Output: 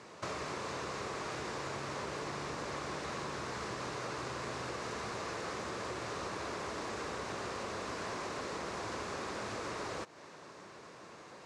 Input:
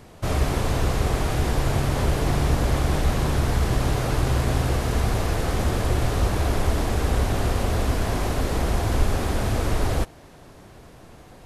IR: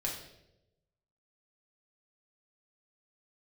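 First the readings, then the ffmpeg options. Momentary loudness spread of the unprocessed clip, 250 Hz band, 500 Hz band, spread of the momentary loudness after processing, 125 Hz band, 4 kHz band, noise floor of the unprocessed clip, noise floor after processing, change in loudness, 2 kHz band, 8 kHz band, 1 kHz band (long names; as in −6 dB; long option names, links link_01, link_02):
2 LU, −16.5 dB, −12.5 dB, 5 LU, −26.0 dB, −11.0 dB, −47 dBFS, −53 dBFS, −15.5 dB, −9.5 dB, −12.0 dB, −10.0 dB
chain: -af "highpass=220,equalizer=frequency=260:width_type=q:width=4:gain=-5,equalizer=frequency=730:width_type=q:width=4:gain=-6,equalizer=frequency=1100:width_type=q:width=4:gain=4,equalizer=frequency=3200:width_type=q:width=4:gain=-5,lowpass=frequency=7400:width=0.5412,lowpass=frequency=7400:width=1.3066,acompressor=threshold=-36dB:ratio=5,lowshelf=frequency=490:gain=-4.5"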